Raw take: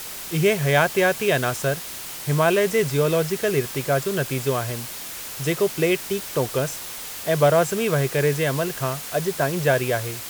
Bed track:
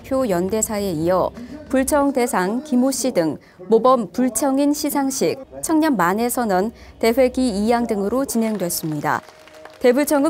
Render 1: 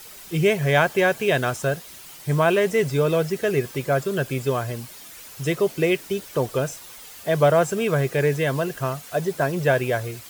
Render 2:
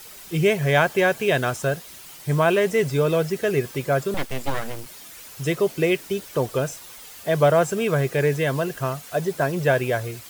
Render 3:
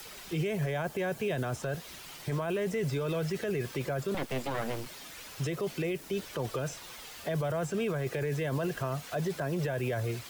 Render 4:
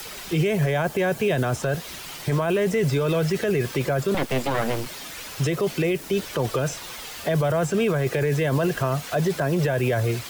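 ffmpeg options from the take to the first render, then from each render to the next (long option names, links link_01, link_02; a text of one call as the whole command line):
ffmpeg -i in.wav -af "afftdn=noise_reduction=10:noise_floor=-35" out.wav
ffmpeg -i in.wav -filter_complex "[0:a]asettb=1/sr,asplit=3[link_01][link_02][link_03];[link_01]atrim=end=4.144[link_04];[link_02]atrim=start=4.14:end=4.86,asetpts=PTS-STARTPTS,afade=type=in:duration=0.004:curve=qsin,afade=type=out:start_time=0.716:duration=0.004:curve=qsin,aeval=exprs='abs(val(0))':channel_layout=same[link_05];[link_03]atrim=start=4.856[link_06];[link_04][link_05]acrossfade=duration=0.004:curve1=hsin:curve2=qsin[link_07];[link_07][link_06]acrossfade=duration=0.004:curve1=qsin:curve2=hsin" out.wav
ffmpeg -i in.wav -filter_complex "[0:a]acrossover=split=100|260|1000|5600[link_01][link_02][link_03][link_04][link_05];[link_01]acompressor=threshold=-40dB:ratio=4[link_06];[link_02]acompressor=threshold=-33dB:ratio=4[link_07];[link_03]acompressor=threshold=-28dB:ratio=4[link_08];[link_04]acompressor=threshold=-36dB:ratio=4[link_09];[link_05]acompressor=threshold=-51dB:ratio=4[link_10];[link_06][link_07][link_08][link_09][link_10]amix=inputs=5:normalize=0,alimiter=limit=-24dB:level=0:latency=1:release=11" out.wav
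ffmpeg -i in.wav -af "volume=9.5dB" out.wav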